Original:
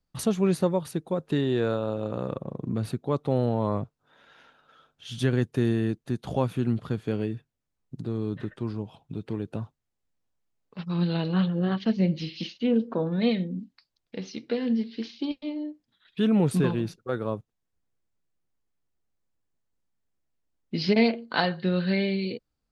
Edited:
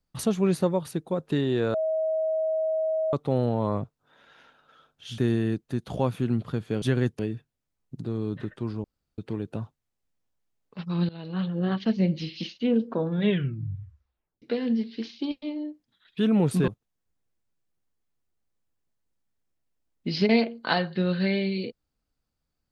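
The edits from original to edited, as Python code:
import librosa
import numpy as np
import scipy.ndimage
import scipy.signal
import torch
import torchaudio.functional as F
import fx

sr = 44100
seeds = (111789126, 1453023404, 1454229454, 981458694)

y = fx.edit(x, sr, fx.bleep(start_s=1.74, length_s=1.39, hz=636.0, db=-23.0),
    fx.move(start_s=5.18, length_s=0.37, to_s=7.19),
    fx.room_tone_fill(start_s=8.84, length_s=0.34),
    fx.fade_in_from(start_s=11.09, length_s=0.6, floor_db=-20.5),
    fx.tape_stop(start_s=13.11, length_s=1.31),
    fx.cut(start_s=16.68, length_s=0.67), tone=tone)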